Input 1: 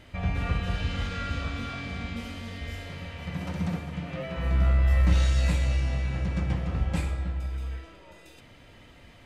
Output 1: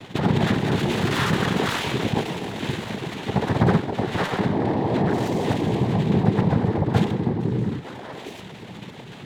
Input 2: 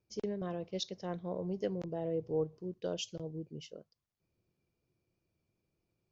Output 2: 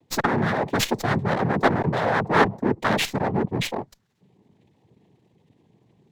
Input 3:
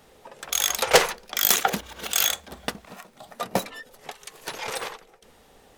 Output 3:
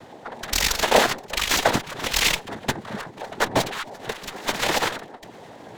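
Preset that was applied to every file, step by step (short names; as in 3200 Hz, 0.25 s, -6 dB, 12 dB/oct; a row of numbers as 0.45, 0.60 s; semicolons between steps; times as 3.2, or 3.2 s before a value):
formant sharpening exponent 1.5; in parallel at 0 dB: vocal rider within 4 dB 0.5 s; on the sum: soft clip -14.5 dBFS; added harmonics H 7 -9 dB, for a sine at -14.5 dBFS; noise vocoder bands 6; running maximum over 3 samples; match loudness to -23 LUFS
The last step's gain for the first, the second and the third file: +5.0, +12.5, +2.5 dB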